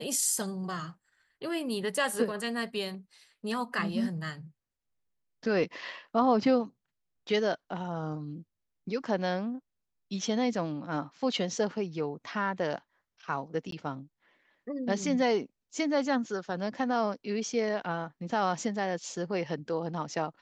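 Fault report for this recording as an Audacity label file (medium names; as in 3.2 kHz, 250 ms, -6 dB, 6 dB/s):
13.710000	13.720000	dropout 13 ms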